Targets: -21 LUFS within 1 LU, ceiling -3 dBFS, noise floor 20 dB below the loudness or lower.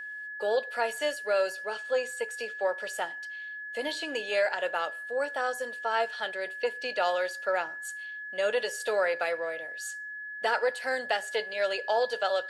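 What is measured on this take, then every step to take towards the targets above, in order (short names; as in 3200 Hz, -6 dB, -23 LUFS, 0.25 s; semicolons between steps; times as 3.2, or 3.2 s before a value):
steady tone 1700 Hz; tone level -37 dBFS; loudness -30.5 LUFS; peak -15.0 dBFS; loudness target -21.0 LUFS
-> notch 1700 Hz, Q 30; gain +9.5 dB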